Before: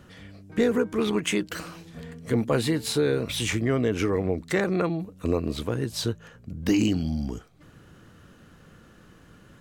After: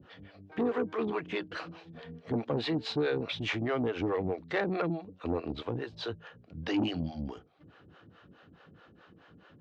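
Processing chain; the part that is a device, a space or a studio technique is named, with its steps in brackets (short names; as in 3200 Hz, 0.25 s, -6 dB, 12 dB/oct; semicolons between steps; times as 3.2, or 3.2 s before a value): guitar amplifier with harmonic tremolo (harmonic tremolo 4.7 Hz, depth 100%, crossover 430 Hz; soft clip -23 dBFS, distortion -15 dB; speaker cabinet 100–4000 Hz, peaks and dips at 130 Hz -5 dB, 210 Hz -5 dB, 770 Hz +4 dB, 2100 Hz -3 dB); gain +1.5 dB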